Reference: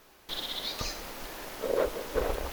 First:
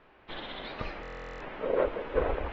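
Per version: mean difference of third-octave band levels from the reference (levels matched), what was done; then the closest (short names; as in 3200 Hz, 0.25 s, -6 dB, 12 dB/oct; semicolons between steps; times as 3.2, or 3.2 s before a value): 9.0 dB: LPF 2700 Hz 24 dB/oct; stuck buffer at 1.01, samples 1024, times 16; AAC 24 kbps 44100 Hz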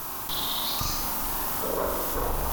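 6.0 dB: ten-band EQ 125 Hz +4 dB, 500 Hz -10 dB, 1000 Hz +8 dB, 2000 Hz -8 dB, 4000 Hz -4 dB, 16000 Hz +11 dB; flutter echo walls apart 7.3 m, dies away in 0.62 s; fast leveller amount 70%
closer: second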